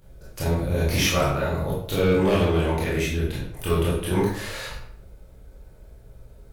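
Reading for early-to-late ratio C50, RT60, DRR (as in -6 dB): 1.0 dB, 0.65 s, -8.0 dB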